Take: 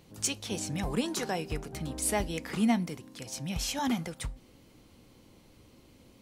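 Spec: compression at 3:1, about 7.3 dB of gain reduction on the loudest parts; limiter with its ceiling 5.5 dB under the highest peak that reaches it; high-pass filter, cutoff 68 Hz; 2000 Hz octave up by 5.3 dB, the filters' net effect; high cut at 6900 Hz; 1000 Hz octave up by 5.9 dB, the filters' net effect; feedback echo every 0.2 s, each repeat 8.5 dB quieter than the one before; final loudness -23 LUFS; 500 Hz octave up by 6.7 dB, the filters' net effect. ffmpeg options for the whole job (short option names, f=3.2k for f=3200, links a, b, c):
-af "highpass=68,lowpass=6.9k,equalizer=f=500:t=o:g=7,equalizer=f=1k:t=o:g=4,equalizer=f=2k:t=o:g=5,acompressor=threshold=-29dB:ratio=3,alimiter=level_in=0.5dB:limit=-24dB:level=0:latency=1,volume=-0.5dB,aecho=1:1:200|400|600|800:0.376|0.143|0.0543|0.0206,volume=12dB"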